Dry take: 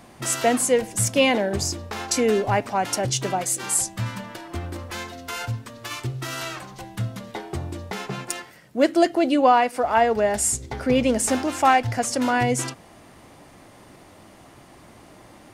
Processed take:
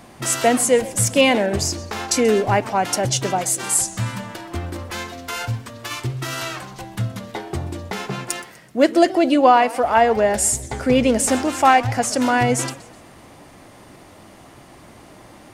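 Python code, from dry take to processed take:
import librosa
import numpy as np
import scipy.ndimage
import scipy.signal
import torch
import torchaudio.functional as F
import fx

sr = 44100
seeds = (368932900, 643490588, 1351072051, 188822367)

y = fx.echo_warbled(x, sr, ms=127, feedback_pct=45, rate_hz=2.8, cents=203, wet_db=-19)
y = F.gain(torch.from_numpy(y), 3.5).numpy()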